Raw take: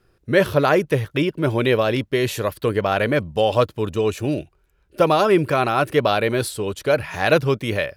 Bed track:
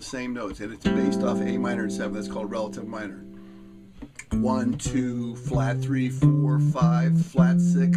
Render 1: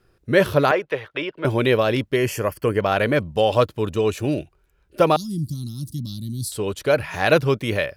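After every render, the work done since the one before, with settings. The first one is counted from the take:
0:00.71–0:01.45: three-way crossover with the lows and the highs turned down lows −18 dB, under 430 Hz, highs −20 dB, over 4,100 Hz
0:02.16–0:02.80: Butterworth band-reject 3,800 Hz, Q 2.6
0:05.16–0:06.52: inverse Chebyshev band-stop filter 420–2,600 Hz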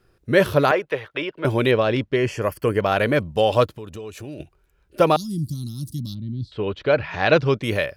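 0:01.71–0:02.42: high-frequency loss of the air 93 metres
0:03.69–0:04.40: downward compressor 4 to 1, threshold −34 dBFS
0:06.13–0:07.62: low-pass filter 2,400 Hz → 6,500 Hz 24 dB per octave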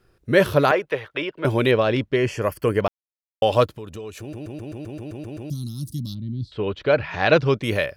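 0:02.88–0:03.42: silence
0:04.20: stutter in place 0.13 s, 10 plays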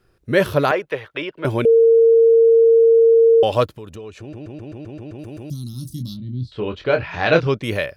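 0:01.65–0:03.43: beep over 457 Hz −8.5 dBFS
0:03.95–0:05.19: high-frequency loss of the air 90 metres
0:05.71–0:07.47: double-tracking delay 24 ms −6 dB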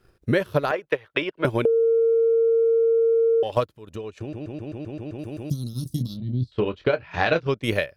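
transient designer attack +6 dB, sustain −11 dB
downward compressor 6 to 1, threshold −18 dBFS, peak gain reduction 11.5 dB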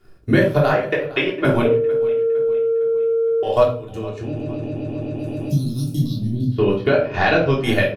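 repeating echo 458 ms, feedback 48%, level −19 dB
rectangular room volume 390 cubic metres, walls furnished, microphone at 3.3 metres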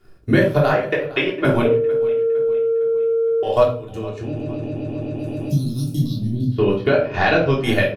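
no processing that can be heard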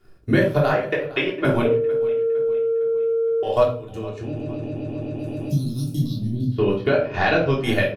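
level −2.5 dB

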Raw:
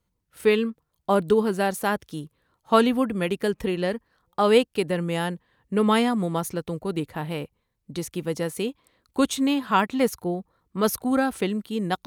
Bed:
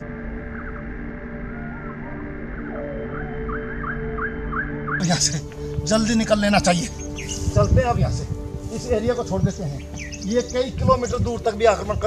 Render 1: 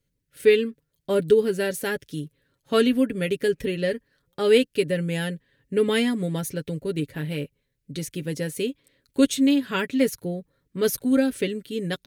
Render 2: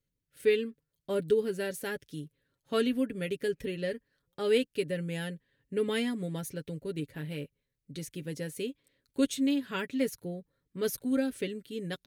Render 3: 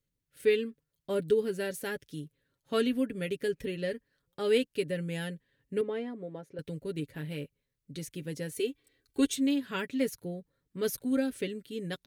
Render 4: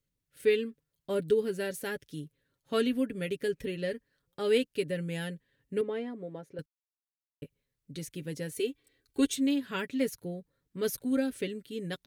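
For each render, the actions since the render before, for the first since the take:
flat-topped bell 940 Hz −14 dB 1.1 octaves; comb filter 7.2 ms, depth 55%
level −8.5 dB
0:05.81–0:06.59: resonant band-pass 560 Hz, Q 1.1; 0:08.51–0:09.36: comb filter 2.6 ms, depth 87%
0:06.66–0:07.42: silence

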